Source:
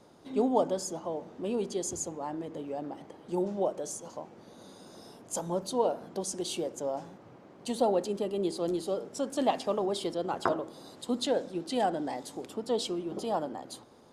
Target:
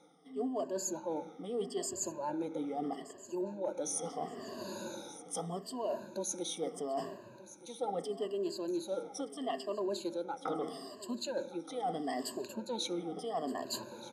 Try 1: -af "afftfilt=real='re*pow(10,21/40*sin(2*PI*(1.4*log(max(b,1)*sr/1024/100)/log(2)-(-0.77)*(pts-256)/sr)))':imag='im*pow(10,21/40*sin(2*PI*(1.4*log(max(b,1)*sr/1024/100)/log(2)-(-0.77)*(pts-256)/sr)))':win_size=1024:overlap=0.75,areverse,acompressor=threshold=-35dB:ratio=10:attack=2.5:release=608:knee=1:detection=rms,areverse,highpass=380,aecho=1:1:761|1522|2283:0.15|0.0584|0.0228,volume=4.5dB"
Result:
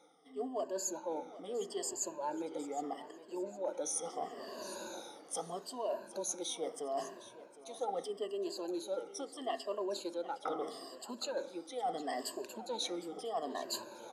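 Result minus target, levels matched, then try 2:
125 Hz band -9.5 dB; echo 0.462 s early
-af "afftfilt=real='re*pow(10,21/40*sin(2*PI*(1.4*log(max(b,1)*sr/1024/100)/log(2)-(-0.77)*(pts-256)/sr)))':imag='im*pow(10,21/40*sin(2*PI*(1.4*log(max(b,1)*sr/1024/100)/log(2)-(-0.77)*(pts-256)/sr)))':win_size=1024:overlap=0.75,areverse,acompressor=threshold=-35dB:ratio=10:attack=2.5:release=608:knee=1:detection=rms,areverse,highpass=170,aecho=1:1:1223|2446|3669:0.15|0.0584|0.0228,volume=4.5dB"

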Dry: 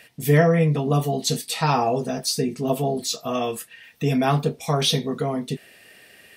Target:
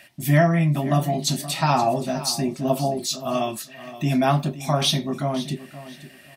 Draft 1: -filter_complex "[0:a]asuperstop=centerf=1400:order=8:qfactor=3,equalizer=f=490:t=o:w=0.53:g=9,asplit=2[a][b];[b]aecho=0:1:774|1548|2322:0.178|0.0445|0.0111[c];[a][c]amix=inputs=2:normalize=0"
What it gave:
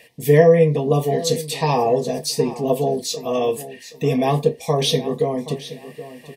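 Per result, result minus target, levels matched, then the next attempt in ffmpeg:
echo 0.251 s late; 500 Hz band +5.5 dB
-filter_complex "[0:a]asuperstop=centerf=1400:order=8:qfactor=3,equalizer=f=490:t=o:w=0.53:g=9,asplit=2[a][b];[b]aecho=0:1:523|1046|1569:0.178|0.0445|0.0111[c];[a][c]amix=inputs=2:normalize=0"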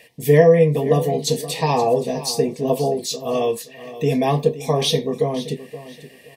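500 Hz band +5.5 dB
-filter_complex "[0:a]asuperstop=centerf=460:order=8:qfactor=3,equalizer=f=490:t=o:w=0.53:g=9,asplit=2[a][b];[b]aecho=0:1:523|1046|1569:0.178|0.0445|0.0111[c];[a][c]amix=inputs=2:normalize=0"

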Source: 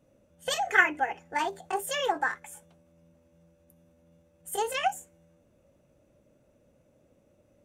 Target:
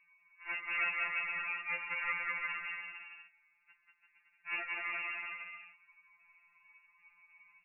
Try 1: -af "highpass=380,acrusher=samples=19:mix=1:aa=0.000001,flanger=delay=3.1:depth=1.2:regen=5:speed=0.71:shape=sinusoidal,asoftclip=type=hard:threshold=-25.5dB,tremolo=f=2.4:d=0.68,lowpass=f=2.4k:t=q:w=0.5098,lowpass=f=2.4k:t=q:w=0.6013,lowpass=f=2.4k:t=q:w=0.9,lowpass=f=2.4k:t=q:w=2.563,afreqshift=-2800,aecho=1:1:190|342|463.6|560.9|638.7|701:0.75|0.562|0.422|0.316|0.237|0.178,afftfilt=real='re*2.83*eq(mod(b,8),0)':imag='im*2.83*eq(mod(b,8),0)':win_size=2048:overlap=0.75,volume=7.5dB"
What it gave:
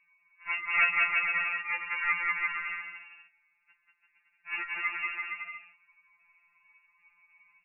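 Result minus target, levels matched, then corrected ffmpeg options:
hard clip: distortion -7 dB
-af "highpass=380,acrusher=samples=19:mix=1:aa=0.000001,flanger=delay=3.1:depth=1.2:regen=5:speed=0.71:shape=sinusoidal,asoftclip=type=hard:threshold=-37.5dB,tremolo=f=2.4:d=0.68,lowpass=f=2.4k:t=q:w=0.5098,lowpass=f=2.4k:t=q:w=0.6013,lowpass=f=2.4k:t=q:w=0.9,lowpass=f=2.4k:t=q:w=2.563,afreqshift=-2800,aecho=1:1:190|342|463.6|560.9|638.7|701:0.75|0.562|0.422|0.316|0.237|0.178,afftfilt=real='re*2.83*eq(mod(b,8),0)':imag='im*2.83*eq(mod(b,8),0)':win_size=2048:overlap=0.75,volume=7.5dB"

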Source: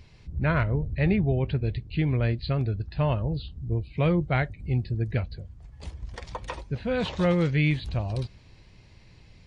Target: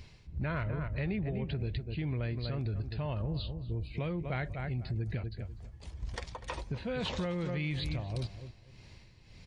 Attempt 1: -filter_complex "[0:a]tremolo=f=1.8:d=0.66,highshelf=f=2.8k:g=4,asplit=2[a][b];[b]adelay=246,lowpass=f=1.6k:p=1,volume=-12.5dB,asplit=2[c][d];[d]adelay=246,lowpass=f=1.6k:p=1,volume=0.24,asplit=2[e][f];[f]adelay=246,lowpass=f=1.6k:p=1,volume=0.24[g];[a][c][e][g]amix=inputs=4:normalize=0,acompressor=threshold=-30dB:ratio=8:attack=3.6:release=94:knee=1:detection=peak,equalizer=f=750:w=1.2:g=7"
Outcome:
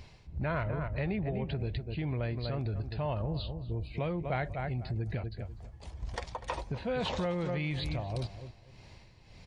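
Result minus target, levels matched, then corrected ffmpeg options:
1000 Hz band +4.0 dB
-filter_complex "[0:a]tremolo=f=1.8:d=0.66,highshelf=f=2.8k:g=4,asplit=2[a][b];[b]adelay=246,lowpass=f=1.6k:p=1,volume=-12.5dB,asplit=2[c][d];[d]adelay=246,lowpass=f=1.6k:p=1,volume=0.24,asplit=2[e][f];[f]adelay=246,lowpass=f=1.6k:p=1,volume=0.24[g];[a][c][e][g]amix=inputs=4:normalize=0,acompressor=threshold=-30dB:ratio=8:attack=3.6:release=94:knee=1:detection=peak"

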